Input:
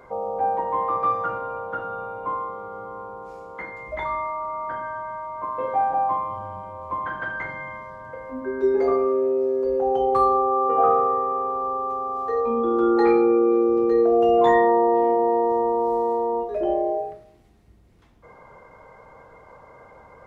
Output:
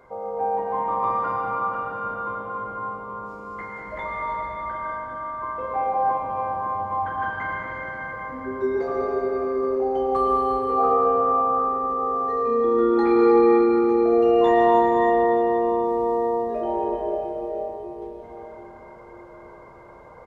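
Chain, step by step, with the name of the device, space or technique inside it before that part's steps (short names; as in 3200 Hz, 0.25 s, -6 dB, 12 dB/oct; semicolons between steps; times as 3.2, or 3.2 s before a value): cave (echo 0.198 s -10 dB; reverb RT60 5.0 s, pre-delay 98 ms, DRR -3.5 dB); gain -4.5 dB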